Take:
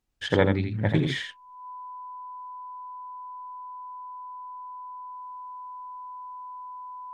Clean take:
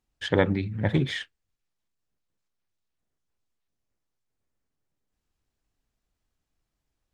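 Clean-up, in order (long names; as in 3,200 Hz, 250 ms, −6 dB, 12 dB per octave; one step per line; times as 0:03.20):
notch filter 1,000 Hz, Q 30
echo removal 84 ms −5.5 dB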